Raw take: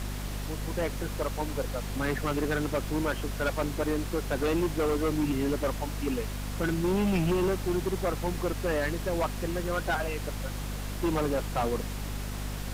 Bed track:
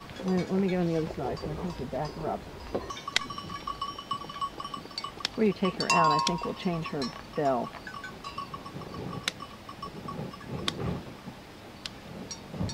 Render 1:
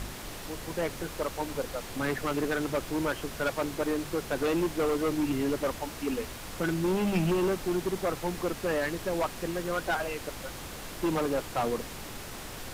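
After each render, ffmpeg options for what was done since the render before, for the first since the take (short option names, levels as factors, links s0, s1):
-af "bandreject=f=50:t=h:w=4,bandreject=f=100:t=h:w=4,bandreject=f=150:t=h:w=4,bandreject=f=200:t=h:w=4,bandreject=f=250:t=h:w=4"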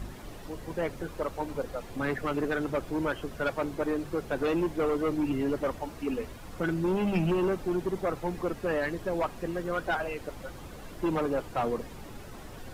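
-af "afftdn=nr=11:nf=-41"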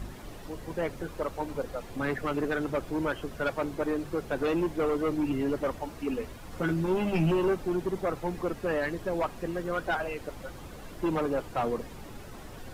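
-filter_complex "[0:a]asettb=1/sr,asplit=3[s0][s1][s2];[s0]atrim=end=6.504[s3];[s1]atrim=start=6.5:end=7.54,asetpts=PTS-STARTPTS,afade=t=in:d=0.004:c=qsin,afade=t=out:st=1.036:d=0.004:c=qsin,asplit=2[s4][s5];[s5]adelay=13,volume=0.531[s6];[s4][s6]amix=inputs=2:normalize=0,atrim=end_sample=45864[s7];[s2]atrim=start=7.536[s8];[s3][s7]acrossfade=d=0.004:c1=hsin:c2=qsin[s9];[s9][s8]acrossfade=d=0.004:c1=qsin:c2=hsin"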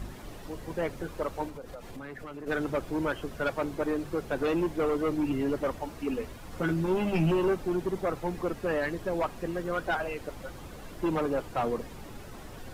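-filter_complex "[0:a]asplit=3[s0][s1][s2];[s0]afade=t=out:st=1.48:d=0.02[s3];[s1]acompressor=threshold=0.0126:ratio=8:attack=3.2:release=140:knee=1:detection=peak,afade=t=in:st=1.48:d=0.02,afade=t=out:st=2.46:d=0.02[s4];[s2]afade=t=in:st=2.46:d=0.02[s5];[s3][s4][s5]amix=inputs=3:normalize=0"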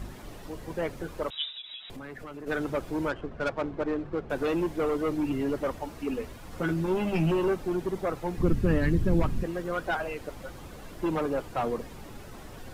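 -filter_complex "[0:a]asettb=1/sr,asplit=3[s0][s1][s2];[s0]atrim=end=1.304[s3];[s1]atrim=start=1.3:end=1.9,asetpts=PTS-STARTPTS,afade=t=in:d=0.004:c=qsin,afade=t=out:st=0.596:d=0.004:c=qsin,lowpass=f=3300:t=q:w=0.5098,lowpass=f=3300:t=q:w=0.6013,lowpass=f=3300:t=q:w=0.9,lowpass=f=3300:t=q:w=2.563,afreqshift=-3900[s4];[s2]atrim=start=1.896[s5];[s3][s4]acrossfade=d=0.004:c1=hsin:c2=qsin[s6];[s6][s5]acrossfade=d=0.004:c1=qsin:c2=hsin,asettb=1/sr,asplit=3[s7][s8][s9];[s7]atrim=end=3.094[s10];[s8]atrim=start=3.09:end=4.3,asetpts=PTS-STARTPTS,afade=t=in:d=0.004:c=qsin,afade=t=out:st=1.206:d=0.004:c=qsin,adynamicsmooth=sensitivity=6:basefreq=1600[s11];[s9]atrim=start=4.296[s12];[s10][s11]acrossfade=d=0.004:c1=hsin:c2=qsin[s13];[s13][s12]acrossfade=d=0.004:c1=qsin:c2=hsin,asplit=3[s14][s15][s16];[s14]afade=t=out:st=8.38:d=0.02[s17];[s15]asubboost=boost=9.5:cutoff=210,afade=t=in:st=8.38:d=0.02,afade=t=out:st=9.42:d=0.02[s18];[s16]afade=t=in:st=9.42:d=0.02[s19];[s17][s18][s19]amix=inputs=3:normalize=0"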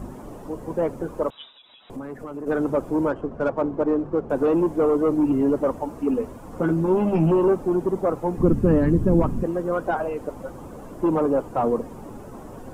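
-filter_complex "[0:a]acrossover=split=4000[s0][s1];[s1]acompressor=threshold=0.00158:ratio=4:attack=1:release=60[s2];[s0][s2]amix=inputs=2:normalize=0,equalizer=f=125:t=o:w=1:g=3,equalizer=f=250:t=o:w=1:g=8,equalizer=f=500:t=o:w=1:g=6,equalizer=f=1000:t=o:w=1:g=7,equalizer=f=2000:t=o:w=1:g=-6,equalizer=f=4000:t=o:w=1:g=-9,equalizer=f=8000:t=o:w=1:g=4"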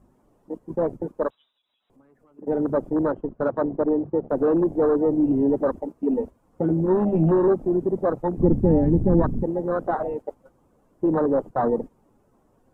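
-af "agate=range=0.447:threshold=0.0282:ratio=16:detection=peak,afwtdn=0.0631"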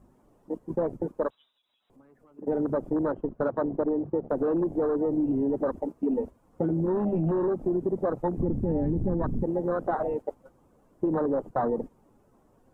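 -af "alimiter=limit=0.188:level=0:latency=1:release=16,acompressor=threshold=0.0708:ratio=6"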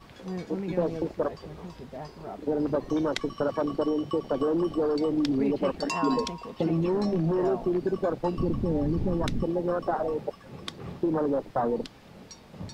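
-filter_complex "[1:a]volume=0.447[s0];[0:a][s0]amix=inputs=2:normalize=0"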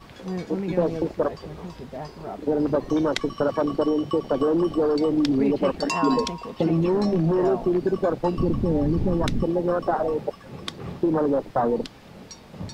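-af "volume=1.68"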